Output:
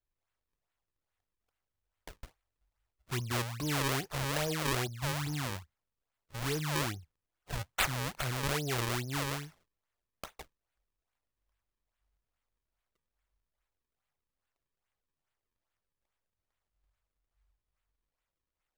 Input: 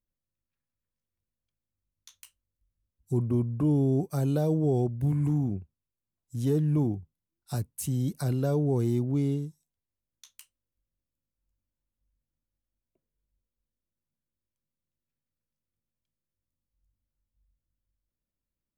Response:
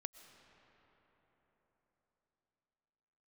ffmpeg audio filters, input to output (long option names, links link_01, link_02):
-af "equalizer=frequency=5700:width_type=o:width=1.8:gain=14,acrusher=samples=36:mix=1:aa=0.000001:lfo=1:lforange=57.6:lforate=2.4,equalizer=frequency=230:width_type=o:width=2.6:gain=-13"